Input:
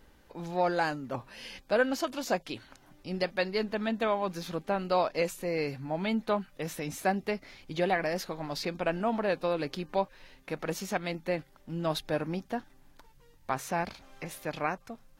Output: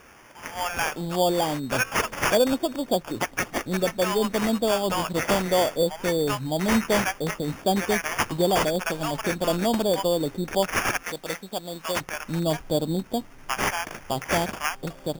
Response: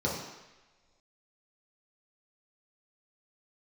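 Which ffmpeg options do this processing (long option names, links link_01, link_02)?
-filter_complex "[0:a]acrossover=split=1900[link_01][link_02];[link_01]adynamicsmooth=sensitivity=7:basefreq=1200[link_03];[link_03][link_02]amix=inputs=2:normalize=0,acrossover=split=920[link_04][link_05];[link_04]adelay=610[link_06];[link_06][link_05]amix=inputs=2:normalize=0,asplit=2[link_07][link_08];[link_08]acompressor=threshold=-44dB:ratio=6,volume=-1.5dB[link_09];[link_07][link_09]amix=inputs=2:normalize=0,aexciter=amount=3.1:drive=6:freq=5100,acrusher=samples=11:mix=1:aa=0.000001,asettb=1/sr,asplit=3[link_10][link_11][link_12];[link_10]atrim=end=11.034[link_13];[link_11]atrim=start=11.03:end=12.01,asetpts=PTS-STARTPTS,afade=type=in:duration=0.004:curve=qsin,afade=type=out:start_time=0.976:duration=0.004:curve=qsin,lowshelf=frequency=500:gain=-12[link_14];[link_12]atrim=start=12.006[link_15];[link_13][link_14]acrossfade=duration=0.004:curve1=hsin:curve2=qsin[link_16];[link_16][link_15]acrossfade=duration=0.004:curve1=qsin:curve2=hsin,volume=6.5dB"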